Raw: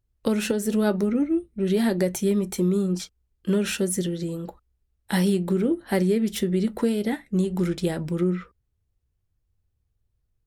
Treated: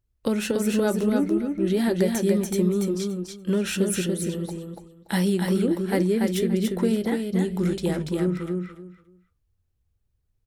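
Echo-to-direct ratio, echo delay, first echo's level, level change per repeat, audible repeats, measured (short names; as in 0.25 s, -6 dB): -4.0 dB, 0.287 s, -4.0 dB, -14.0 dB, 3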